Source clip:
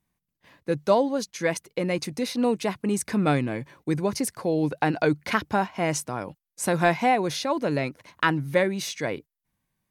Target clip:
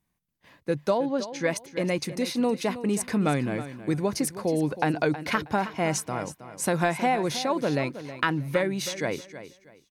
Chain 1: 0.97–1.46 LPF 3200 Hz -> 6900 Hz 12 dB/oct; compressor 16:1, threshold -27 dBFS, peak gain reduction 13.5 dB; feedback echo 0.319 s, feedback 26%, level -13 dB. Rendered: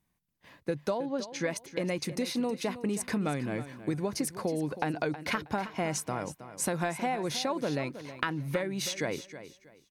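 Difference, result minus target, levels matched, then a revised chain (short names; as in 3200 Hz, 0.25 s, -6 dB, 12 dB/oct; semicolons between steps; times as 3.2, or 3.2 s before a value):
compressor: peak gain reduction +7.5 dB
0.97–1.46 LPF 3200 Hz -> 6900 Hz 12 dB/oct; compressor 16:1, threshold -19 dBFS, peak gain reduction 6 dB; feedback echo 0.319 s, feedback 26%, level -13 dB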